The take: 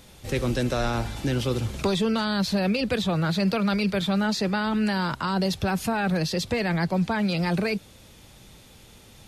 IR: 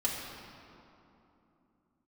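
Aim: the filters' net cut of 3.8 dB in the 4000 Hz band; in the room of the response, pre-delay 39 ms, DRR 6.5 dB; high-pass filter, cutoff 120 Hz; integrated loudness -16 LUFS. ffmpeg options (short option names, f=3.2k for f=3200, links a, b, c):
-filter_complex "[0:a]highpass=120,equalizer=f=4k:t=o:g=-4.5,asplit=2[a][b];[1:a]atrim=start_sample=2205,adelay=39[c];[b][c]afir=irnorm=-1:irlink=0,volume=-12.5dB[d];[a][d]amix=inputs=2:normalize=0,volume=9dB"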